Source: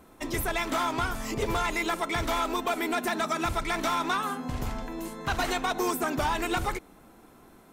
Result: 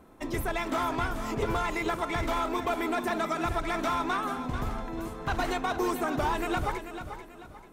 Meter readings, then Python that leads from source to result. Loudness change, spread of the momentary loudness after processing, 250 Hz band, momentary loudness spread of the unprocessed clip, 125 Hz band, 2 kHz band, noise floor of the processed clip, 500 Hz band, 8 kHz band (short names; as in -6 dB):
-1.5 dB, 8 LU, 0.0 dB, 6 LU, +0.5 dB, -2.5 dB, -49 dBFS, 0.0 dB, -7.0 dB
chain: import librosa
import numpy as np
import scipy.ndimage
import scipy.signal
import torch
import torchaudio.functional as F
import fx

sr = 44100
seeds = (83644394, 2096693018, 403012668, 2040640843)

p1 = fx.high_shelf(x, sr, hz=2300.0, db=-8.0)
y = p1 + fx.echo_feedback(p1, sr, ms=439, feedback_pct=36, wet_db=-10, dry=0)